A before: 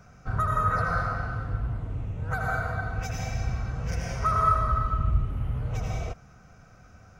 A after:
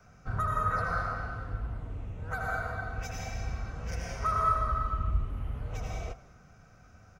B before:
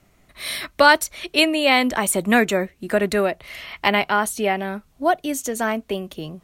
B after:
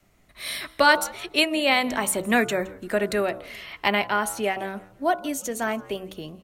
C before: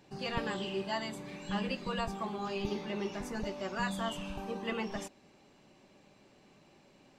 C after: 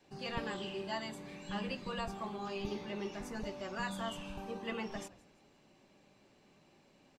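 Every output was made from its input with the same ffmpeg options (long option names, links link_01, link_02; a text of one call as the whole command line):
ffmpeg -i in.wav -filter_complex "[0:a]bandreject=frequency=63.69:width_type=h:width=4,bandreject=frequency=127.38:width_type=h:width=4,bandreject=frequency=191.07:width_type=h:width=4,bandreject=frequency=254.76:width_type=h:width=4,bandreject=frequency=318.45:width_type=h:width=4,bandreject=frequency=382.14:width_type=h:width=4,bandreject=frequency=445.83:width_type=h:width=4,bandreject=frequency=509.52:width_type=h:width=4,bandreject=frequency=573.21:width_type=h:width=4,bandreject=frequency=636.9:width_type=h:width=4,bandreject=frequency=700.59:width_type=h:width=4,bandreject=frequency=764.28:width_type=h:width=4,bandreject=frequency=827.97:width_type=h:width=4,bandreject=frequency=891.66:width_type=h:width=4,bandreject=frequency=955.35:width_type=h:width=4,bandreject=frequency=1019.04:width_type=h:width=4,bandreject=frequency=1082.73:width_type=h:width=4,bandreject=frequency=1146.42:width_type=h:width=4,bandreject=frequency=1210.11:width_type=h:width=4,bandreject=frequency=1273.8:width_type=h:width=4,bandreject=frequency=1337.49:width_type=h:width=4,bandreject=frequency=1401.18:width_type=h:width=4,bandreject=frequency=1464.87:width_type=h:width=4,adynamicequalizer=threshold=0.00562:dfrequency=130:dqfactor=1.6:tfrequency=130:tqfactor=1.6:attack=5:release=100:ratio=0.375:range=3.5:mode=cutabove:tftype=bell,asplit=4[link_01][link_02][link_03][link_04];[link_02]adelay=167,afreqshift=-87,volume=-22dB[link_05];[link_03]adelay=334,afreqshift=-174,volume=-30.2dB[link_06];[link_04]adelay=501,afreqshift=-261,volume=-38.4dB[link_07];[link_01][link_05][link_06][link_07]amix=inputs=4:normalize=0,volume=-3.5dB" out.wav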